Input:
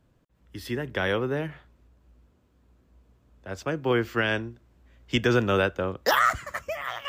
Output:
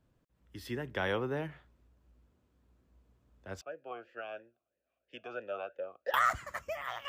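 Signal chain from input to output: dynamic bell 860 Hz, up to +5 dB, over -39 dBFS, Q 2; 3.61–6.14 s: talking filter a-e 3 Hz; trim -7.5 dB

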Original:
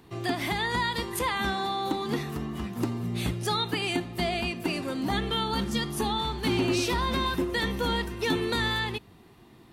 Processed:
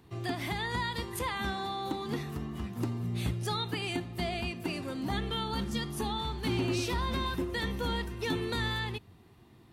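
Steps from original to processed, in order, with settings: peaking EQ 90 Hz +8 dB 1.1 oct; trim -6 dB

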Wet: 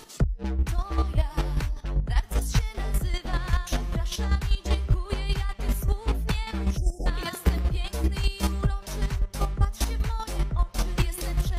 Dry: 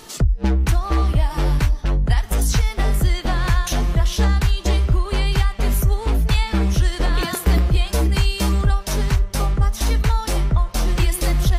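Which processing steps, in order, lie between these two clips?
spectral selection erased 6.77–7.06 s, 880–4900 Hz; square tremolo 5.1 Hz, depth 60%, duty 20%; trim -3.5 dB

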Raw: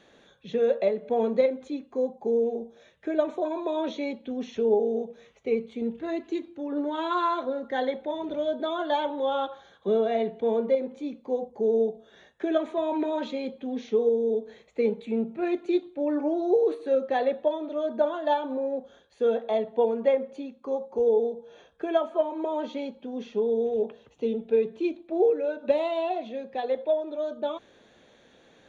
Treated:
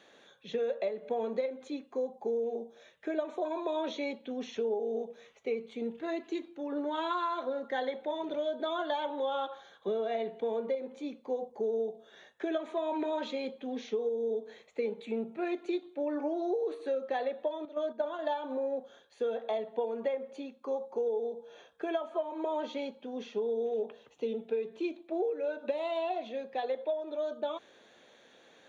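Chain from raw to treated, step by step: high-pass 450 Hz 6 dB/octave; 17.65–18.19 s: gate -32 dBFS, range -10 dB; compression 6:1, threshold -29 dBFS, peak gain reduction 10 dB

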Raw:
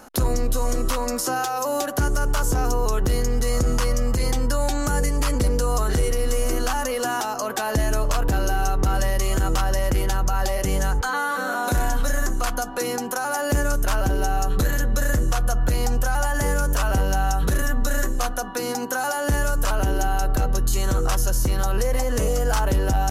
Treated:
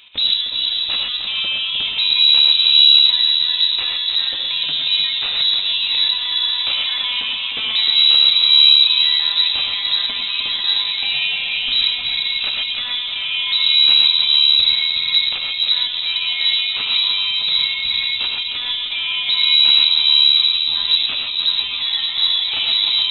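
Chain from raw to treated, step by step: on a send: two-band feedback delay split 1 kHz, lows 455 ms, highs 307 ms, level -7.5 dB; on the sum: gated-style reverb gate 150 ms rising, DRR 1 dB; frequency inversion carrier 3.9 kHz

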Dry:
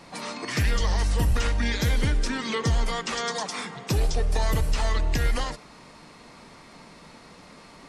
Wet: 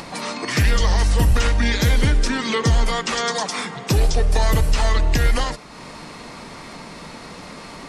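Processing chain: upward compressor, threshold -36 dBFS; trim +6.5 dB

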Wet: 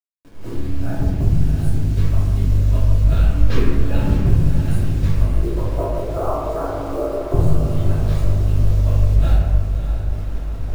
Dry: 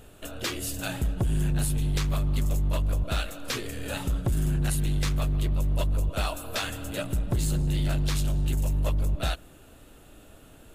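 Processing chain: fade-in on the opening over 2.13 s; expander -44 dBFS; level-controlled noise filter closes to 580 Hz, open at -24 dBFS; 5.21–7.34 s: elliptic band-pass 340–1200 Hz, stop band 50 dB; reverb removal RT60 1.5 s; tilt EQ -3.5 dB/octave; compression 3:1, threshold -29 dBFS, peak gain reduction 15.5 dB; bit crusher 9-bit; echo that smears into a reverb 602 ms, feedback 62%, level -9 dB; reverberation RT60 1.4 s, pre-delay 3 ms, DRR -8 dB; trim +4.5 dB

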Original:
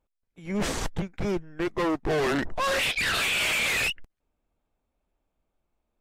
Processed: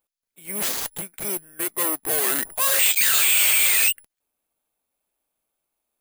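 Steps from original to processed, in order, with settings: RIAA curve recording; careless resampling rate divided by 4×, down filtered, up zero stuff; trim -1.5 dB

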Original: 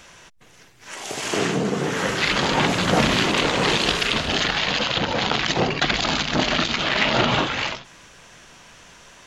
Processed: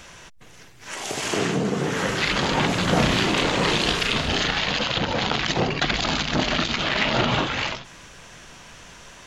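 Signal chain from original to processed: bass shelf 140 Hz +5 dB; in parallel at +2 dB: compression, threshold -28 dBFS, peak gain reduction 14 dB; 2.86–4.60 s: on the sum: doubling 34 ms -8 dB; trim -5 dB

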